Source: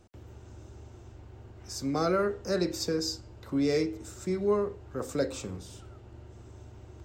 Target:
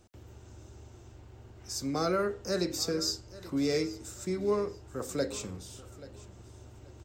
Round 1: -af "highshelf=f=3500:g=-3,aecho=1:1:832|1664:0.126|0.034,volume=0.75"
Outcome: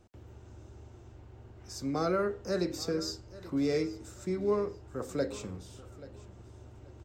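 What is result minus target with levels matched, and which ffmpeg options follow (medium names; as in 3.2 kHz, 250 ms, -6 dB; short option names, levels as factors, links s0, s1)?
8 kHz band -6.5 dB
-af "highshelf=f=3500:g=6.5,aecho=1:1:832|1664:0.126|0.034,volume=0.75"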